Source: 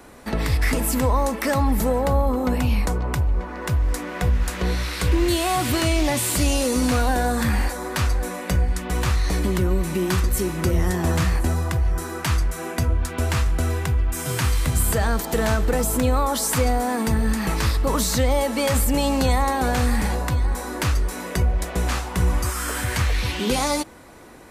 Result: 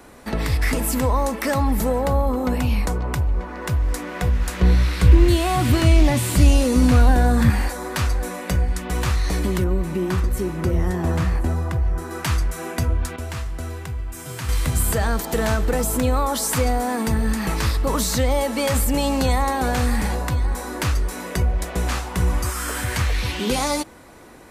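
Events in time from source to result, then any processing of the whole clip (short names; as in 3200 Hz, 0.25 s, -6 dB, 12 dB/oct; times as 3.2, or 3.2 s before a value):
4.6–7.5 tone controls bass +9 dB, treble -4 dB
9.64–12.11 high shelf 2300 Hz -9.5 dB
13.16–14.49 resonator 110 Hz, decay 1.8 s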